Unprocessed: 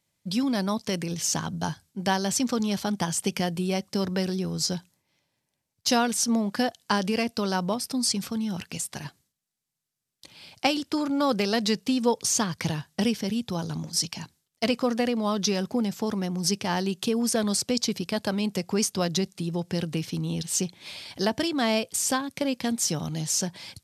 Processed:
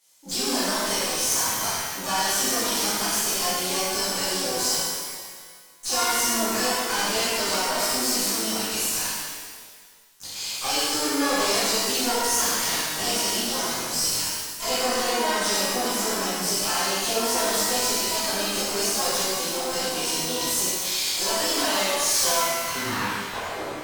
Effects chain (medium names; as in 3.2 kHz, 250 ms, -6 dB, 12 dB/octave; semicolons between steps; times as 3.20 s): tape stop on the ending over 2.35 s; de-esser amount 60%; high-pass 440 Hz 12 dB/octave; peaking EQ 6.6 kHz +11.5 dB 1.6 oct; in parallel at +2 dB: compression 12:1, threshold -36 dBFS, peak gain reduction 18.5 dB; on the sum: valve stage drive 25 dB, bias 0.35; harmony voices +7 st -3 dB; pitch-shifted reverb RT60 1.7 s, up +12 st, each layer -8 dB, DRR -10.5 dB; trim -6 dB